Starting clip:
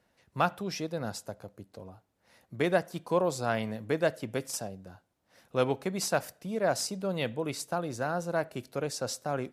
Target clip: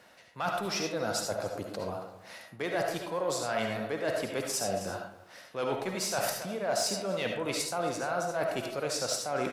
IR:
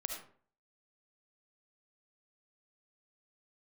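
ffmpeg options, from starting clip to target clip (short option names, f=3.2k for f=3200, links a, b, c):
-filter_complex "[0:a]asplit=2[a][b];[b]asoftclip=type=tanh:threshold=-29dB,volume=-5dB[c];[a][c]amix=inputs=2:normalize=0,asplit=2[d][e];[e]highpass=f=720:p=1,volume=10dB,asoftclip=type=tanh:threshold=-11.5dB[f];[d][f]amix=inputs=2:normalize=0,lowpass=f=8k:p=1,volume=-6dB,highpass=61,asplit=2[g][h];[h]adelay=274.1,volume=-18dB,highshelf=f=4k:g=-6.17[i];[g][i]amix=inputs=2:normalize=0,areverse,acompressor=threshold=-38dB:ratio=6,areverse[j];[1:a]atrim=start_sample=2205[k];[j][k]afir=irnorm=-1:irlink=0,volume=8.5dB"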